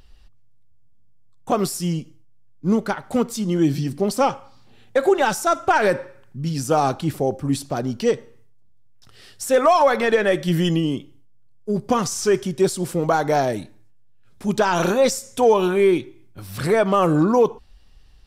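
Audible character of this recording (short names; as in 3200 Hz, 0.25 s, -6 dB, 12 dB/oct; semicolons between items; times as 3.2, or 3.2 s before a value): noise floor -48 dBFS; spectral tilt -5.5 dB/oct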